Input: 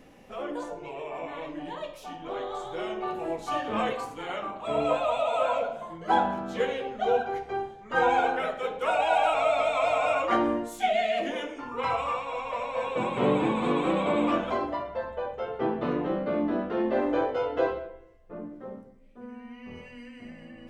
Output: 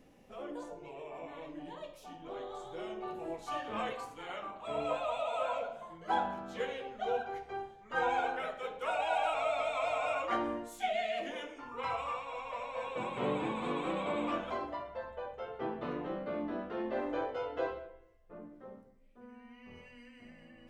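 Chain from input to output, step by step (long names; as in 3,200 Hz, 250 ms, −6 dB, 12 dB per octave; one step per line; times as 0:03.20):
parametric band 1,600 Hz −4 dB 2.6 octaves, from 0:03.34 240 Hz
level −7 dB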